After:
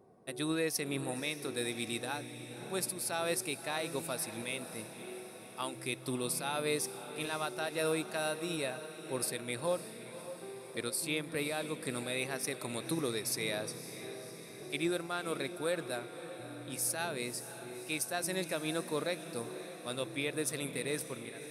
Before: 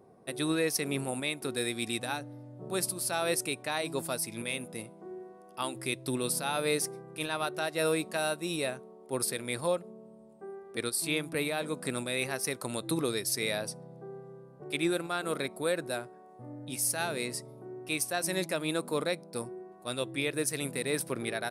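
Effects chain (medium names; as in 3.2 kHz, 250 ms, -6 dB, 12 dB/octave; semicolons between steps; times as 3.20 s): fade out at the end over 0.64 s; echo that smears into a reverb 556 ms, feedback 63%, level -12 dB; trim -4 dB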